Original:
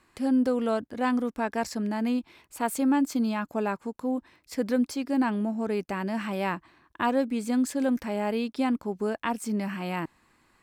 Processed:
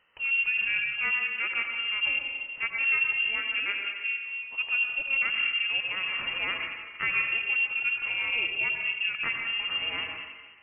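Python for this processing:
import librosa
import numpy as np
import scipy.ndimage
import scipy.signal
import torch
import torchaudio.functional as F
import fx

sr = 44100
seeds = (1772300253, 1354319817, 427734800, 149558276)

y = fx.rev_freeverb(x, sr, rt60_s=1.5, hf_ratio=0.75, predelay_ms=55, drr_db=1.5)
y = fx.freq_invert(y, sr, carrier_hz=3000)
y = y * librosa.db_to_amplitude(-3.5)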